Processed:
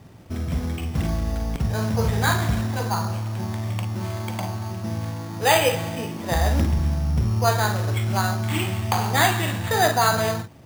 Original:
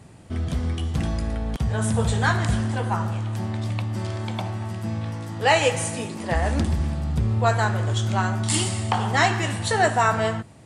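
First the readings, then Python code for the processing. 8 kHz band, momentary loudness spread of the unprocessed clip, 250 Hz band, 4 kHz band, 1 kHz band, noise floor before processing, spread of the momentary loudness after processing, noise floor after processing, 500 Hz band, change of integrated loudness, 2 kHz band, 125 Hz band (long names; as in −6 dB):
0.0 dB, 9 LU, 0.0 dB, +1.5 dB, +0.5 dB, −43 dBFS, 10 LU, −34 dBFS, +0.5 dB, +0.5 dB, 0.0 dB, +0.5 dB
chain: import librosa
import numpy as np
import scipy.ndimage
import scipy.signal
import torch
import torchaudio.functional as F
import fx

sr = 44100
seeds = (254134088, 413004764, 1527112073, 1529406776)

p1 = scipy.signal.sosfilt(scipy.signal.butter(6, 3600.0, 'lowpass', fs=sr, output='sos'), x)
p2 = p1 + fx.room_early_taps(p1, sr, ms=(42, 53), db=(-8.5, -10.5), dry=0)
y = np.repeat(p2[::8], 8)[:len(p2)]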